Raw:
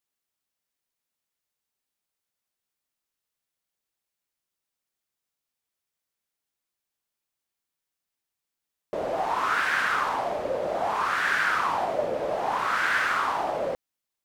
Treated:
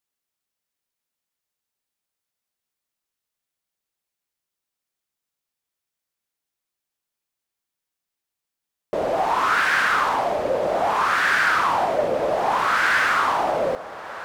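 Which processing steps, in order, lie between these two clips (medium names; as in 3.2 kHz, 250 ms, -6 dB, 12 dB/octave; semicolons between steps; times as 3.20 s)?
waveshaping leveller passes 1; echo that smears into a reverb 1598 ms, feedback 47%, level -15 dB; trim +2.5 dB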